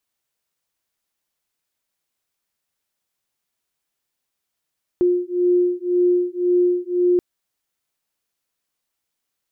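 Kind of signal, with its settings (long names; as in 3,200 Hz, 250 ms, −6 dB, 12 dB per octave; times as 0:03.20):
two tones that beat 355 Hz, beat 1.9 Hz, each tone −18.5 dBFS 2.18 s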